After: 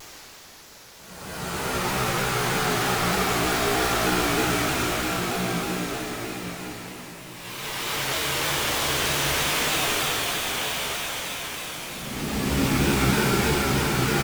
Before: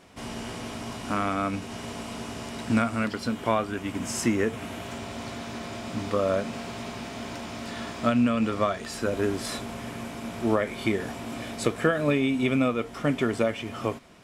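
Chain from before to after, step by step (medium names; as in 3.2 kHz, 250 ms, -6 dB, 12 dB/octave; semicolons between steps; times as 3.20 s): tracing distortion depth 0.035 ms; band-stop 1.4 kHz, Q 29; in parallel at 0 dB: peak limiter -21 dBFS, peak gain reduction 11.5 dB; on the sum: upward compressor, threshold -28 dBFS; formant-preserving pitch shift -8.5 st; painted sound noise, 2.01–2.35 s, 270–3800 Hz -25 dBFS; saturation -20.5 dBFS, distortion -11 dB; bit crusher 4-bit; on a send: bouncing-ball echo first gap 120 ms, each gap 0.8×, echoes 5; on the sum: Paulstretch 6.8×, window 0.25 s, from 0.86 s; vibrato with a chosen wave saw down 3.2 Hz, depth 100 cents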